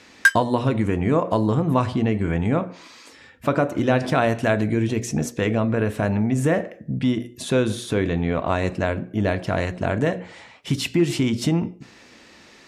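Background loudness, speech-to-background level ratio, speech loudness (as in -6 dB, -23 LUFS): -19.5 LUFS, -3.0 dB, -22.5 LUFS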